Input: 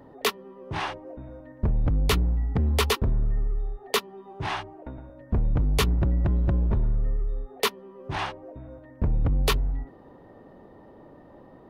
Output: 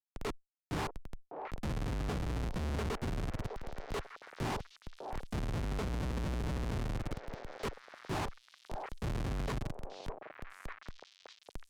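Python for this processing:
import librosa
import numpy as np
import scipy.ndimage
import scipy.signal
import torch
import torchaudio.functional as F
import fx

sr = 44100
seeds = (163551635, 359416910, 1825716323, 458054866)

p1 = fx.octave_divider(x, sr, octaves=2, level_db=0.0)
p2 = scipy.signal.sosfilt(scipy.signal.butter(2, 220.0, 'highpass', fs=sr, output='sos'), p1)
p3 = fx.tilt_eq(p2, sr, slope=-4.0)
p4 = fx.level_steps(p3, sr, step_db=15)
p5 = fx.schmitt(p4, sr, flips_db=-36.5)
p6 = fx.air_absorb(p5, sr, metres=60.0)
p7 = p6 + fx.echo_stepped(p6, sr, ms=602, hz=630.0, octaves=1.4, feedback_pct=70, wet_db=-6.5, dry=0)
p8 = fx.cheby_harmonics(p7, sr, harmonics=(5, 6), levels_db=(-13, -23), full_scale_db=-26.0)
p9 = fx.band_squash(p8, sr, depth_pct=40)
y = p9 * 10.0 ** (-3.5 / 20.0)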